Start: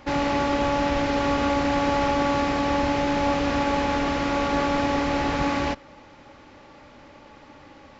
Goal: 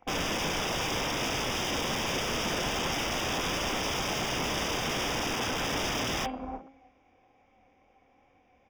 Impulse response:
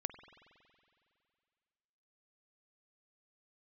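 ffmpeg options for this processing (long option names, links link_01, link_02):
-filter_complex "[0:a]aecho=1:1:297|594|891:0.224|0.0604|0.0163,asplit=2[link_01][link_02];[1:a]atrim=start_sample=2205,afade=type=out:start_time=0.3:duration=0.01,atrim=end_sample=13671[link_03];[link_02][link_03]afir=irnorm=-1:irlink=0,volume=-8dB[link_04];[link_01][link_04]amix=inputs=2:normalize=0,flanger=delay=20:depth=5.6:speed=2.6,equalizer=frequency=160:width_type=o:width=0.33:gain=-7,equalizer=frequency=250:width_type=o:width=0.33:gain=-3,equalizer=frequency=800:width_type=o:width=0.33:gain=8,equalizer=frequency=2500:width_type=o:width=0.33:gain=12,asetrate=40517,aresample=44100,acrossover=split=400[link_05][link_06];[link_05]acompressor=threshold=-27dB:ratio=6[link_07];[link_07][link_06]amix=inputs=2:normalize=0,aeval=exprs='(mod(10.6*val(0)+1,2)-1)/10.6':channel_layout=same,afwtdn=0.0251,asuperstop=centerf=4200:order=4:qfactor=3.1,equalizer=frequency=1700:width_type=o:width=1.5:gain=-7.5,bandreject=frequency=270.3:width_type=h:width=4,bandreject=frequency=540.6:width_type=h:width=4,bandreject=frequency=810.9:width_type=h:width=4,bandreject=frequency=1081.2:width_type=h:width=4,bandreject=frequency=1351.5:width_type=h:width=4,bandreject=frequency=1621.8:width_type=h:width=4,bandreject=frequency=1892.1:width_type=h:width=4,bandreject=frequency=2162.4:width_type=h:width=4,bandreject=frequency=2432.7:width_type=h:width=4,bandreject=frequency=2703:width_type=h:width=4,bandreject=frequency=2973.3:width_type=h:width=4,bandreject=frequency=3243.6:width_type=h:width=4,bandreject=frequency=3513.9:width_type=h:width=4,bandreject=frequency=3784.2:width_type=h:width=4,bandreject=frequency=4054.5:width_type=h:width=4,bandreject=frequency=4324.8:width_type=h:width=4,bandreject=frequency=4595.1:width_type=h:width=4,bandreject=frequency=4865.4:width_type=h:width=4"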